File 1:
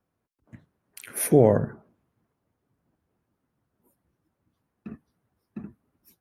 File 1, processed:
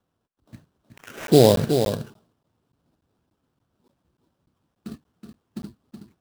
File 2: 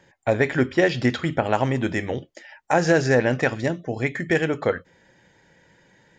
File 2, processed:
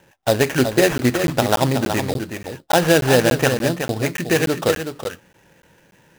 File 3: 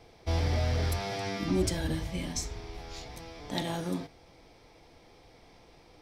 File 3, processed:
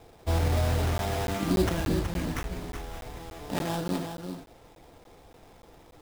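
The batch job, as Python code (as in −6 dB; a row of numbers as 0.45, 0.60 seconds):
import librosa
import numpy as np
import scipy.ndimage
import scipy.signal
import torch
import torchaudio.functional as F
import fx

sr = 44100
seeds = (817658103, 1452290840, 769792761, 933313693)

y = fx.env_lowpass(x, sr, base_hz=2800.0, full_db=-20.5)
y = scipy.signal.sosfilt(scipy.signal.cheby1(6, 3, 6400.0, 'lowpass', fs=sr, output='sos'), y)
y = fx.peak_eq(y, sr, hz=2100.0, db=-6.5, octaves=0.49)
y = fx.sample_hold(y, sr, seeds[0], rate_hz=4400.0, jitter_pct=20)
y = y + 10.0 ** (-7.5 / 20.0) * np.pad(y, (int(372 * sr / 1000.0), 0))[:len(y)]
y = fx.buffer_crackle(y, sr, first_s=0.98, period_s=0.29, block=512, kind='zero')
y = y * librosa.db_to_amplitude(6.0)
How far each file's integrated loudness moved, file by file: +3.5, +4.0, +3.0 LU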